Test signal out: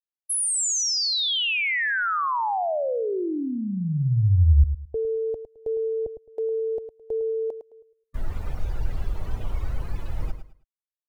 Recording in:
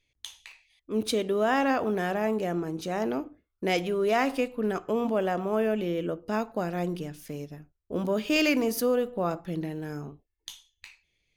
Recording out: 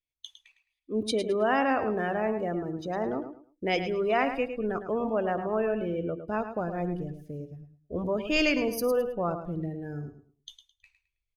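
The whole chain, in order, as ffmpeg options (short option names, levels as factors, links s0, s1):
-af "afftdn=nr=21:nf=-36,asubboost=boost=7:cutoff=81,aecho=1:1:107|214|321:0.316|0.0791|0.0198"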